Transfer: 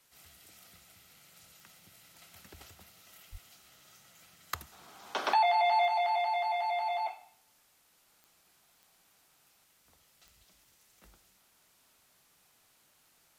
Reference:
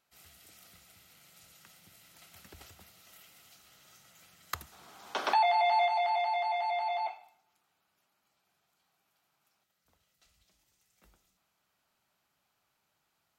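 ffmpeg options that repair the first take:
-filter_complex "[0:a]adeclick=t=4,asplit=3[a][b][c];[a]afade=t=out:st=3.31:d=0.02[d];[b]highpass=f=140:w=0.5412,highpass=f=140:w=1.3066,afade=t=in:st=3.31:d=0.02,afade=t=out:st=3.43:d=0.02[e];[c]afade=t=in:st=3.43:d=0.02[f];[d][e][f]amix=inputs=3:normalize=0,agate=range=-21dB:threshold=-60dB,asetnsamples=n=441:p=0,asendcmd='8.06 volume volume -4.5dB',volume=0dB"

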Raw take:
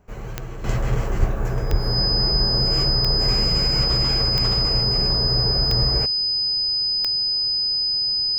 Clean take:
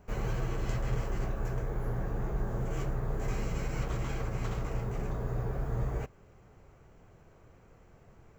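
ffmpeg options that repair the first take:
-filter_complex "[0:a]adeclick=t=4,bandreject=f=5k:w=30,asplit=3[a][b][c];[a]afade=t=out:st=1.19:d=0.02[d];[b]highpass=f=140:w=0.5412,highpass=f=140:w=1.3066,afade=t=in:st=1.19:d=0.02,afade=t=out:st=1.31:d=0.02[e];[c]afade=t=in:st=1.31:d=0.02[f];[d][e][f]amix=inputs=3:normalize=0,asplit=3[g][h][i];[g]afade=t=out:st=1.7:d=0.02[j];[h]highpass=f=140:w=0.5412,highpass=f=140:w=1.3066,afade=t=in:st=1.7:d=0.02,afade=t=out:st=1.82:d=0.02[k];[i]afade=t=in:st=1.82:d=0.02[l];[j][k][l]amix=inputs=3:normalize=0,asetnsamples=n=441:p=0,asendcmd='0.64 volume volume -10dB',volume=0dB"

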